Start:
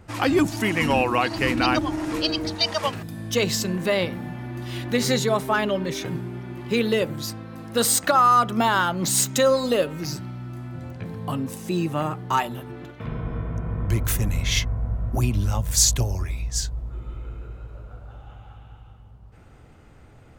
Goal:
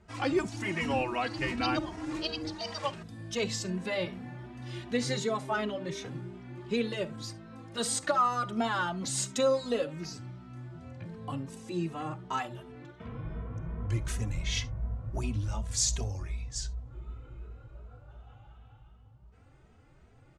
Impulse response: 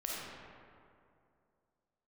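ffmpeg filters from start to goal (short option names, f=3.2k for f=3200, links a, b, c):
-filter_complex "[0:a]lowpass=f=9k:w=0.5412,lowpass=f=9k:w=1.3066,asplit=2[a][b];[1:a]atrim=start_sample=2205,atrim=end_sample=3528[c];[b][c]afir=irnorm=-1:irlink=0,volume=-12.5dB[d];[a][d]amix=inputs=2:normalize=0,asplit=2[e][f];[f]adelay=2.8,afreqshift=2.7[g];[e][g]amix=inputs=2:normalize=1,volume=-8dB"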